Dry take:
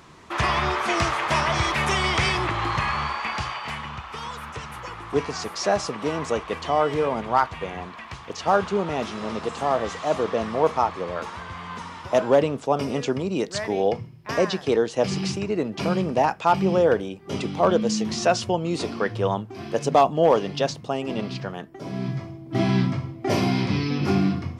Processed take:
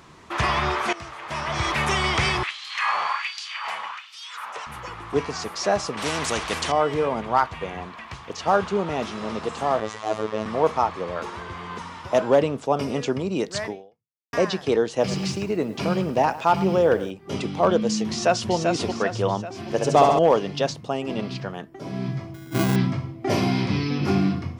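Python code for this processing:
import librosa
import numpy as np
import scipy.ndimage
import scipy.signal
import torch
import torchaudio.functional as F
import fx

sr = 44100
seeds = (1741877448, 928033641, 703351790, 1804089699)

y = fx.filter_lfo_highpass(x, sr, shape='sine', hz=1.3, low_hz=600.0, high_hz=4300.0, q=1.7, at=(2.43, 4.67))
y = fx.spectral_comp(y, sr, ratio=2.0, at=(5.97, 6.72))
y = fx.robotise(y, sr, hz=108.0, at=(9.8, 10.46))
y = fx.peak_eq(y, sr, hz=380.0, db=12.0, octaves=0.46, at=(11.24, 11.78))
y = fx.echo_crushed(y, sr, ms=106, feedback_pct=35, bits=7, wet_db=-15.0, at=(14.9, 17.11))
y = fx.echo_throw(y, sr, start_s=18.05, length_s=0.47, ms=390, feedback_pct=50, wet_db=-4.5)
y = fx.room_flutter(y, sr, wall_m=11.8, rt60_s=1.3, at=(19.63, 20.19))
y = fx.sample_hold(y, sr, seeds[0], rate_hz=1800.0, jitter_pct=0, at=(22.34, 22.76))
y = fx.edit(y, sr, fx.fade_in_from(start_s=0.93, length_s=0.79, curve='qua', floor_db=-16.0),
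    fx.fade_out_span(start_s=13.67, length_s=0.66, curve='exp'), tone=tone)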